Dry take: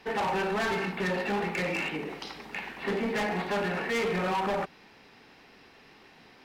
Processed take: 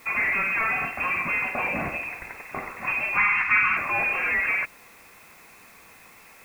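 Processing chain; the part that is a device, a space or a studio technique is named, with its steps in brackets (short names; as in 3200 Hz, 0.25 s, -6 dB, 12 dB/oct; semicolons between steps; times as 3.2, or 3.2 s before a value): scrambled radio voice (BPF 300–3000 Hz; inverted band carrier 2900 Hz; white noise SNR 27 dB); 3.17–3.77 EQ curve 220 Hz 0 dB, 600 Hz -16 dB, 940 Hz +3 dB, 1400 Hz +8 dB, 7100 Hz -2 dB, 10000 Hz -9 dB; gain +5 dB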